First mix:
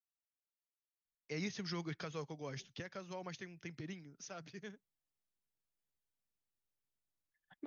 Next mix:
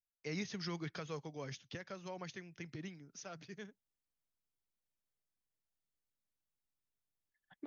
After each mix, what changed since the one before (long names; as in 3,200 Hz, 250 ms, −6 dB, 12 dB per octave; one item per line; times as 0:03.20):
first voice: entry −1.05 s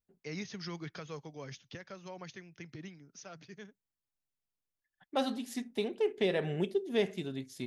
second voice: entry −2.50 s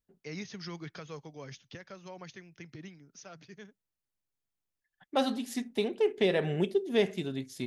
second voice +3.5 dB